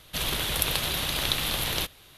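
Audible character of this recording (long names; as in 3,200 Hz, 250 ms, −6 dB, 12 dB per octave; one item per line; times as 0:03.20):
background noise floor −53 dBFS
spectral slope −2.0 dB per octave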